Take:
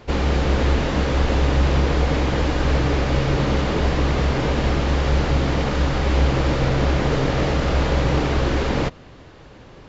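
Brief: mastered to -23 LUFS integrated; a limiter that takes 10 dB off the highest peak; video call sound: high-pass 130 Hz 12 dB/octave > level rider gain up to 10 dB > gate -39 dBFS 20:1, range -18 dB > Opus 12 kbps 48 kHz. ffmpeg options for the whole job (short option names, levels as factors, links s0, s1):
-af "alimiter=limit=0.158:level=0:latency=1,highpass=130,dynaudnorm=m=3.16,agate=range=0.126:threshold=0.0112:ratio=20,volume=1.88" -ar 48000 -c:a libopus -b:a 12k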